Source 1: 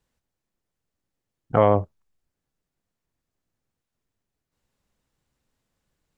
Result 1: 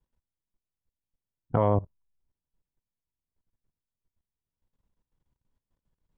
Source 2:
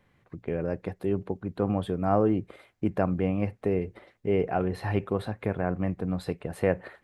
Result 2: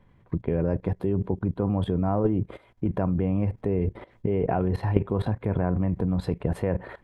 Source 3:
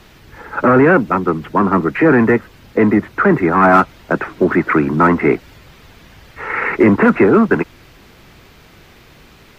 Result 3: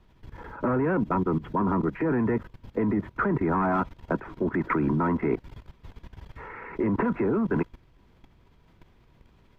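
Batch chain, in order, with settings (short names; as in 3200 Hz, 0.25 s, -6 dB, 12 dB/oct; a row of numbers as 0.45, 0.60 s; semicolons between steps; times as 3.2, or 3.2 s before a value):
tilt -2.5 dB/oct; small resonant body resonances 970/3300 Hz, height 10 dB, ringing for 45 ms; level quantiser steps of 17 dB; match loudness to -27 LUFS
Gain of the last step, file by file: -5.5, +10.0, -7.0 dB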